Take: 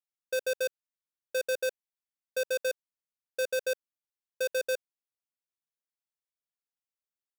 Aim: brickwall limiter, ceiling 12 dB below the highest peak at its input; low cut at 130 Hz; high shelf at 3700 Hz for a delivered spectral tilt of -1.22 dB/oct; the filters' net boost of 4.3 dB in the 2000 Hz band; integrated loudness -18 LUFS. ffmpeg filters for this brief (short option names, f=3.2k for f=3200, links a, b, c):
-af "highpass=130,equalizer=f=2k:t=o:g=5.5,highshelf=f=3.7k:g=4,volume=25dB,alimiter=limit=-6dB:level=0:latency=1"